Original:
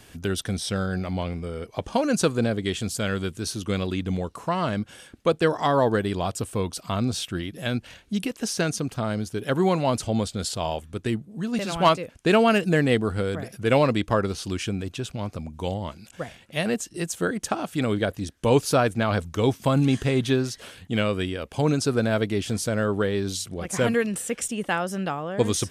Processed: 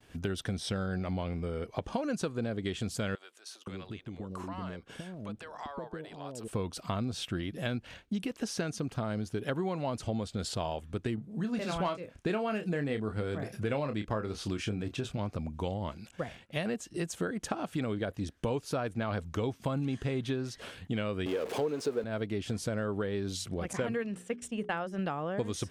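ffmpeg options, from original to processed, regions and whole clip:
-filter_complex "[0:a]asettb=1/sr,asplit=3[s0][s1][s2];[s0]atrim=end=3.154[s3];[s1]atrim=start=3.15:end=6.48,asetpts=PTS-STARTPTS,afade=t=in:d=0.004:c=qsin,afade=t=out:st=3.326:d=0.004:c=qsin,equalizer=f=72:t=o:w=0.88:g=-5,acompressor=threshold=0.0178:ratio=8:attack=3.2:release=140:knee=1:detection=peak,acrossover=split=550[s4][s5];[s4]adelay=520[s6];[s6][s5]amix=inputs=2:normalize=0,atrim=end_sample=146853[s7];[s2]atrim=start=6.476[s8];[s3][s7]acrossfade=d=0.004:c1=hsin:c2=qsin[s9];[s9][s8]acrossfade=d=0.004:c1=qsin:c2=hsin,asettb=1/sr,asplit=3[s10][s11][s12];[s10]atrim=end=11.154[s13];[s11]atrim=start=11.15:end=15.19,asetpts=PTS-STARTPTS,afade=t=in:d=0.004:c=qsin,afade=t=out:st=4.036:d=0.004:c=qsin,bandreject=f=2900:w=28,asplit=2[s14][s15];[s15]adelay=28,volume=0.376[s16];[s14][s16]amix=inputs=2:normalize=0,atrim=end_sample=178164[s17];[s12]atrim=start=15.186[s18];[s13][s17]acrossfade=d=0.004:c1=hsin:c2=qsin[s19];[s19][s18]acrossfade=d=0.004:c1=qsin:c2=hsin,asettb=1/sr,asplit=3[s20][s21][s22];[s20]atrim=end=21.264[s23];[s21]atrim=start=21.26:end=22.04,asetpts=PTS-STARTPTS,afade=t=in:d=0.004:c=qsin,afade=t=out:st=0.776:d=0.004:c=qsin,aeval=exprs='val(0)+0.5*0.0473*sgn(val(0))':c=same,highpass=220,equalizer=f=450:t=o:w=0.48:g=11[s24];[s22]atrim=start=22.036[s25];[s23][s24]acrossfade=d=0.004:c1=hsin:c2=qsin[s26];[s26][s25]acrossfade=d=0.004:c1=qsin:c2=hsin,asettb=1/sr,asplit=3[s27][s28][s29];[s27]atrim=end=23.734[s30];[s28]atrim=start=23.73:end=24.99,asetpts=PTS-STARTPTS,afade=t=in:d=0.004:c=qsin,afade=t=out:st=1.256:d=0.004:c=qsin,agate=range=0.0224:threshold=0.0501:ratio=3:release=100:detection=peak,highshelf=f=7500:g=-7,bandreject=f=60:t=h:w=6,bandreject=f=120:t=h:w=6,bandreject=f=180:t=h:w=6,bandreject=f=240:t=h:w=6,bandreject=f=300:t=h:w=6,bandreject=f=360:t=h:w=6,bandreject=f=420:t=h:w=6[s31];[s29]atrim=start=24.986[s32];[s30][s31]acrossfade=d=0.004:c1=hsin:c2=qsin[s33];[s33][s32]acrossfade=d=0.004:c1=qsin:c2=hsin,aemphasis=mode=reproduction:type=cd,agate=range=0.0224:threshold=0.00501:ratio=3:detection=peak,acompressor=threshold=0.0355:ratio=6,volume=0.891"

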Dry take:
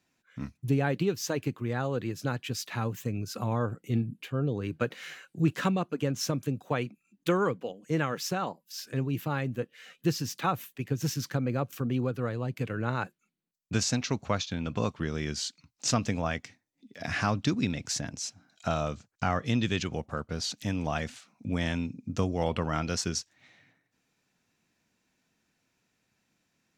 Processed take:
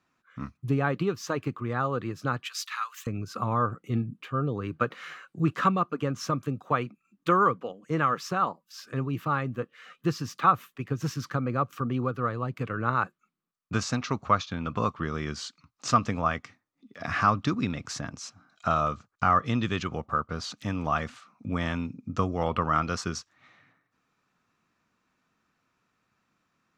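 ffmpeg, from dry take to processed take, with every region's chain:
-filter_complex "[0:a]asettb=1/sr,asplit=3[s0][s1][s2];[s0]atrim=end=2.454[s3];[s1]atrim=start=2.45:end=3.07,asetpts=PTS-STARTPTS,afade=t=in:d=0.004:c=qsin,afade=t=out:st=0.616:d=0.004:c=qsin,highpass=f=1100:w=0.5412,highpass=f=1100:w=1.3066,tiltshelf=f=1400:g=-8,acompressor=mode=upward:threshold=0.00708:ratio=2.5:attack=3.2:release=140:knee=2.83:detection=peak[s4];[s2]atrim=start=3.066[s5];[s3][s4]acrossfade=d=0.004:c1=hsin:c2=qsin[s6];[s6][s5]acrossfade=d=0.004:c1=qsin:c2=hsin,lowpass=f=3600:p=1,equalizer=f=1200:t=o:w=0.42:g=15"

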